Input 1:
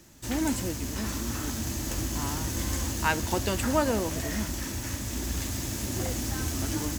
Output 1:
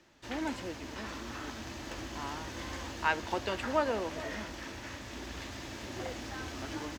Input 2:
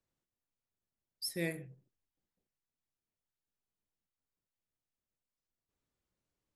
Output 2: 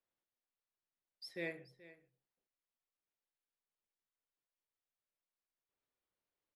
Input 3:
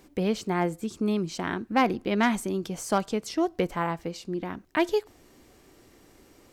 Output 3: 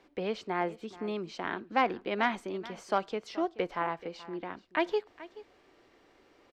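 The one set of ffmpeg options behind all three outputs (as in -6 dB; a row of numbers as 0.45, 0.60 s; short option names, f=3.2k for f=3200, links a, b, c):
-filter_complex "[0:a]acrossover=split=350 4500:gain=0.251 1 0.0708[a][b][c];[a][b][c]amix=inputs=3:normalize=0,asplit=2[d][e];[e]aecho=0:1:429:0.126[f];[d][f]amix=inputs=2:normalize=0,volume=-2.5dB"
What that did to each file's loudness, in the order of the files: -7.5, -6.5, -5.5 LU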